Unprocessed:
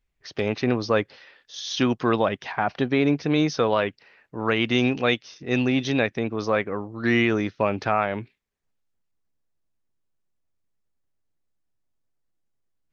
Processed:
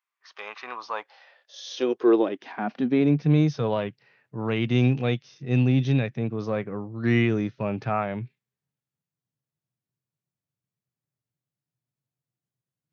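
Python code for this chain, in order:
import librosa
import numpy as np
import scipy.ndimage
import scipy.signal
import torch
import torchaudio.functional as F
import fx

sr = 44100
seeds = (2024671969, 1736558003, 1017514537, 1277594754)

y = fx.filter_sweep_highpass(x, sr, from_hz=1100.0, to_hz=130.0, start_s=0.7, end_s=3.43, q=4.3)
y = fx.hpss(y, sr, part='percussive', gain_db=-9)
y = y * librosa.db_to_amplitude(-3.0)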